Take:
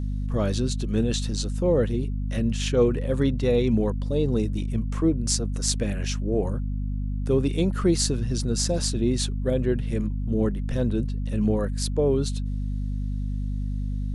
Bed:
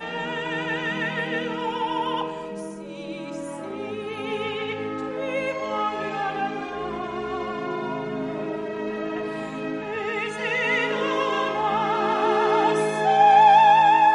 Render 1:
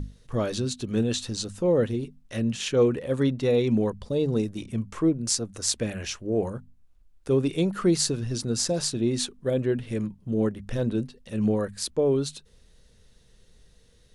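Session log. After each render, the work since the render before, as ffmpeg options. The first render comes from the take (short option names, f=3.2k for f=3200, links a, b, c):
-af "bandreject=f=50:t=h:w=6,bandreject=f=100:t=h:w=6,bandreject=f=150:t=h:w=6,bandreject=f=200:t=h:w=6,bandreject=f=250:t=h:w=6"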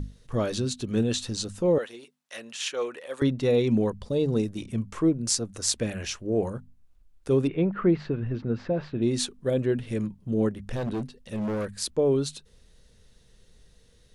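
-filter_complex "[0:a]asettb=1/sr,asplit=3[a][b][c];[a]atrim=end=1.784[d];[b]atrim=start=1.78:end=3.22,asetpts=PTS-STARTPTS,afade=t=in:d=0.004:c=qsin,afade=t=out:st=1.436:d=0.004:c=qsin,highpass=770[e];[c]atrim=start=3.216[f];[d][e]acrossfade=d=0.004:c1=hsin:c2=qsin[g];[g][f]acrossfade=d=0.004:c1=qsin:c2=hsin,asettb=1/sr,asplit=3[h][i][j];[h]atrim=end=7.474[k];[i]atrim=start=7.47:end=9.02,asetpts=PTS-STARTPTS,afade=t=in:d=0.004:c=qsin,afade=t=out:st=1.546:d=0.004:c=qsin,lowpass=f=2.4k:w=0.5412,lowpass=f=2.4k:w=1.3066[l];[j]atrim=start=9.016[m];[k][l]acrossfade=d=0.004:c1=hsin:c2=qsin[n];[n][m]acrossfade=d=0.004:c1=qsin:c2=hsin,asettb=1/sr,asplit=3[o][p][q];[o]atrim=end=10.724[r];[p]atrim=start=10.72:end=11.74,asetpts=PTS-STARTPTS,afade=t=in:d=0.004:c=qsin,afade=t=out:st=1.016:d=0.004:c=qsin,asoftclip=type=hard:threshold=-26.5dB[s];[q]atrim=start=11.736[t];[r][s]acrossfade=d=0.004:c1=hsin:c2=qsin[u];[u][t]acrossfade=d=0.004:c1=qsin:c2=hsin"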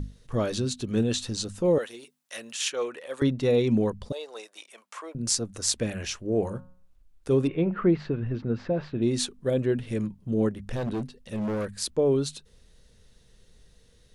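-filter_complex "[0:a]asettb=1/sr,asplit=3[a][b][c];[a]atrim=end=1.644[d];[b]atrim=start=1.64:end=2.7,asetpts=PTS-STARTPTS,afade=t=in:d=0.004:c=qsin,afade=t=out:st=1.056:d=0.004:c=qsin,highshelf=f=6.9k:g=9.5[e];[c]atrim=start=2.696[f];[d][e]acrossfade=d=0.004:c1=hsin:c2=qsin[g];[g][f]acrossfade=d=0.004:c1=qsin:c2=hsin,asettb=1/sr,asplit=3[h][i][j];[h]atrim=end=4.124[k];[i]atrim=start=4.12:end=5.15,asetpts=PTS-STARTPTS,afade=t=in:d=0.004:c=qsin,afade=t=out:st=1.026:d=0.004:c=qsin,highpass=f=650:w=0.5412,highpass=f=650:w=1.3066[l];[j]atrim=start=5.146[m];[k][l]acrossfade=d=0.004:c1=hsin:c2=qsin[n];[n][m]acrossfade=d=0.004:c1=qsin:c2=hsin,asplit=3[o][p][q];[o]afade=t=out:st=6.44:d=0.02[r];[p]bandreject=f=181.7:t=h:w=4,bandreject=f=363.4:t=h:w=4,bandreject=f=545.1:t=h:w=4,bandreject=f=726.8:t=h:w=4,bandreject=f=908.5:t=h:w=4,bandreject=f=1.0902k:t=h:w=4,bandreject=f=1.2719k:t=h:w=4,bandreject=f=1.4536k:t=h:w=4,bandreject=f=1.6353k:t=h:w=4,bandreject=f=1.817k:t=h:w=4,bandreject=f=1.9987k:t=h:w=4,bandreject=f=2.1804k:t=h:w=4,bandreject=f=2.3621k:t=h:w=4,bandreject=f=2.5438k:t=h:w=4,bandreject=f=2.7255k:t=h:w=4,bandreject=f=2.9072k:t=h:w=4,bandreject=f=3.0889k:t=h:w=4,afade=t=in:st=6.44:d=0.02,afade=t=out:st=7.75:d=0.02[s];[q]afade=t=in:st=7.75:d=0.02[t];[r][s][t]amix=inputs=3:normalize=0"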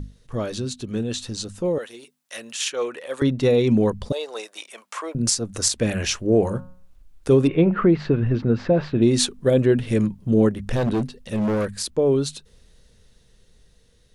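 -af "alimiter=limit=-16.5dB:level=0:latency=1:release=228,dynaudnorm=f=890:g=7:m=9dB"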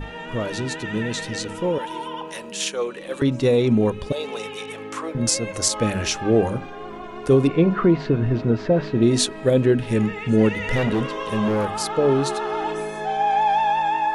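-filter_complex "[1:a]volume=-5.5dB[a];[0:a][a]amix=inputs=2:normalize=0"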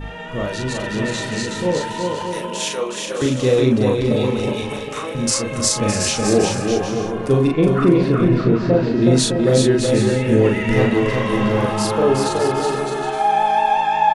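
-filter_complex "[0:a]asplit=2[a][b];[b]adelay=39,volume=-2.5dB[c];[a][c]amix=inputs=2:normalize=0,aecho=1:1:370|610.5|766.8|868.4|934.5:0.631|0.398|0.251|0.158|0.1"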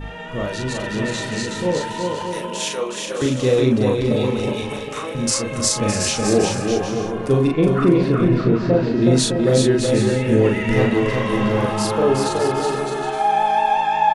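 -af "volume=-1dB"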